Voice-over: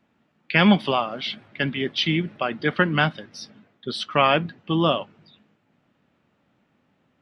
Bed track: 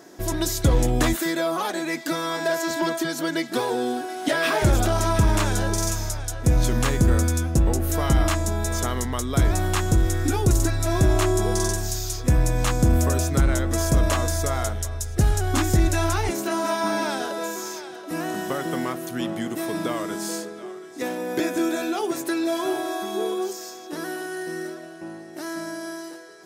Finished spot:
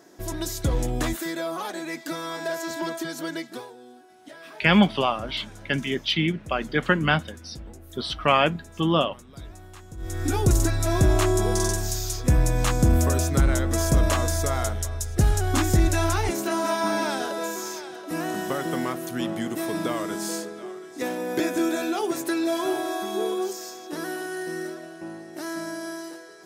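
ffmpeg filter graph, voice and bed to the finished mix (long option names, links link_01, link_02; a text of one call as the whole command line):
ffmpeg -i stem1.wav -i stem2.wav -filter_complex "[0:a]adelay=4100,volume=-1dB[link_01];[1:a]volume=16dB,afade=type=out:start_time=3.31:duration=0.42:silence=0.149624,afade=type=in:start_time=9.97:duration=0.4:silence=0.0841395[link_02];[link_01][link_02]amix=inputs=2:normalize=0" out.wav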